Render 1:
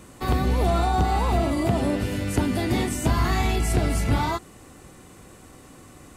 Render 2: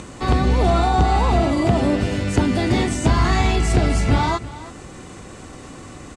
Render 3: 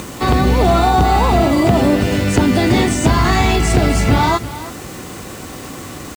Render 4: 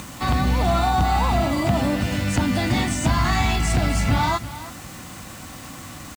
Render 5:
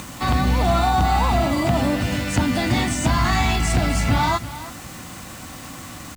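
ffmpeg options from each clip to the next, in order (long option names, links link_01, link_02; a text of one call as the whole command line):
ffmpeg -i in.wav -af "acompressor=mode=upward:threshold=-35dB:ratio=2.5,lowpass=frequency=8100:width=0.5412,lowpass=frequency=8100:width=1.3066,aecho=1:1:329:0.15,volume=5dB" out.wav
ffmpeg -i in.wav -filter_complex "[0:a]highpass=frequency=73:poles=1,asplit=2[link_01][link_02];[link_02]alimiter=limit=-14dB:level=0:latency=1:release=125,volume=1dB[link_03];[link_01][link_03]amix=inputs=2:normalize=0,acrusher=bits=5:mix=0:aa=0.000001,volume=1dB" out.wav
ffmpeg -i in.wav -af "equalizer=frequency=410:width_type=o:width=0.54:gain=-15,volume=-5.5dB" out.wav
ffmpeg -i in.wav -af "bandreject=frequency=50:width_type=h:width=6,bandreject=frequency=100:width_type=h:width=6,bandreject=frequency=150:width_type=h:width=6,bandreject=frequency=200:width_type=h:width=6,volume=1.5dB" out.wav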